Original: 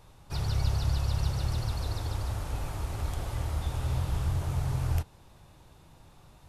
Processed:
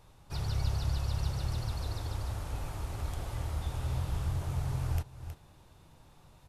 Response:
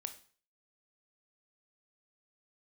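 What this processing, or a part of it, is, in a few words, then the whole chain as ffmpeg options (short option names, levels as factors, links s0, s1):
ducked delay: -filter_complex "[0:a]asplit=3[s0][s1][s2];[s1]adelay=318,volume=0.376[s3];[s2]apad=whole_len=300170[s4];[s3][s4]sidechaincompress=threshold=0.00562:ratio=3:attack=6.7:release=218[s5];[s0][s5]amix=inputs=2:normalize=0,volume=0.668"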